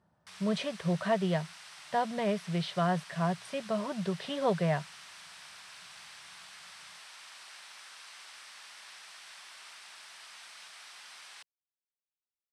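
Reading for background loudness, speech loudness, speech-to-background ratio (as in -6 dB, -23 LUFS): -48.0 LUFS, -32.5 LUFS, 15.5 dB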